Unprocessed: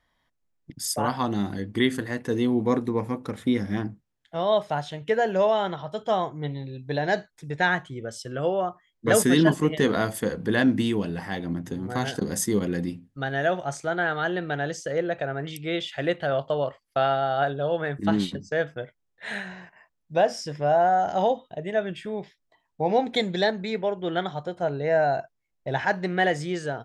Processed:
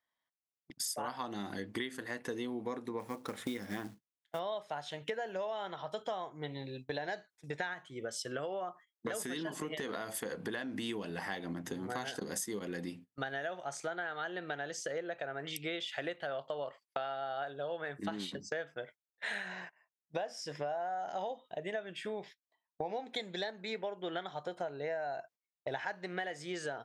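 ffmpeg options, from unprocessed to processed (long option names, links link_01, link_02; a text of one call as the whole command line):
ffmpeg -i in.wav -filter_complex "[0:a]asplit=3[link_01][link_02][link_03];[link_01]afade=type=out:start_time=2.99:duration=0.02[link_04];[link_02]acrusher=bits=6:mode=log:mix=0:aa=0.000001,afade=type=in:start_time=2.99:duration=0.02,afade=type=out:start_time=4.38:duration=0.02[link_05];[link_03]afade=type=in:start_time=4.38:duration=0.02[link_06];[link_04][link_05][link_06]amix=inputs=3:normalize=0,asettb=1/sr,asplit=3[link_07][link_08][link_09];[link_07]atrim=end=7.734[link_10];[link_08]atrim=start=7.73:end=10.89,asetpts=PTS-STARTPTS,afade=type=in:duration=0.004:curve=qsin,afade=type=out:start_time=3.156:duration=0.004:curve=qsin,acompressor=threshold=-23dB:ratio=6:attack=3.2:release=140:knee=1:detection=peak[link_11];[link_09]atrim=start=10.886[link_12];[link_10][link_11]acrossfade=duration=0.004:curve1=hsin:curve2=qsin[link_13];[link_13][link_12]acrossfade=duration=0.004:curve1=qsin:curve2=hsin,highpass=frequency=550:poles=1,agate=range=-17dB:threshold=-49dB:ratio=16:detection=peak,acompressor=threshold=-37dB:ratio=10,volume=2dB" out.wav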